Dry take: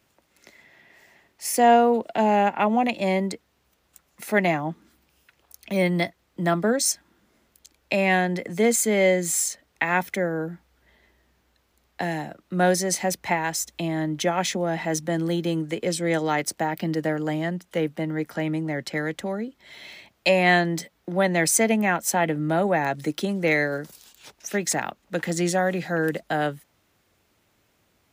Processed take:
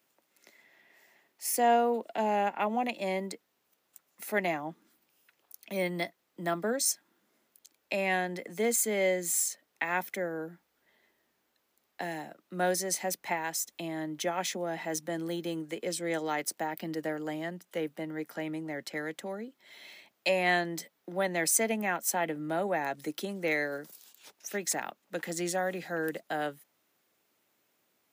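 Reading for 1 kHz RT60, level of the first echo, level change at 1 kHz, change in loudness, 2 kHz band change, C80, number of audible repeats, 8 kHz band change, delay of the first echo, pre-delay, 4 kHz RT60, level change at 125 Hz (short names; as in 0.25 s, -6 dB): none, none, -8.0 dB, -8.0 dB, -8.0 dB, none, none, -5.5 dB, none, none, none, -14.0 dB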